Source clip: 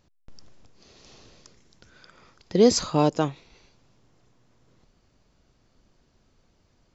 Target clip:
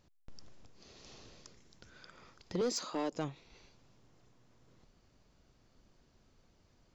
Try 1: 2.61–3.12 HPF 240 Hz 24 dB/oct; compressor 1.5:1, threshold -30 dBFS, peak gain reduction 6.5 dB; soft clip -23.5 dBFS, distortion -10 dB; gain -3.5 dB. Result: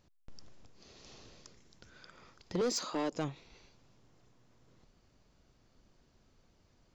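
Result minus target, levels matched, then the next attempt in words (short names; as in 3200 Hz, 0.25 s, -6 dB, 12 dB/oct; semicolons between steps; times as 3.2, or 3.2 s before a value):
compressor: peak gain reduction -3 dB
2.61–3.12 HPF 240 Hz 24 dB/oct; compressor 1.5:1, threshold -38.5 dBFS, peak gain reduction 9.5 dB; soft clip -23.5 dBFS, distortion -13 dB; gain -3.5 dB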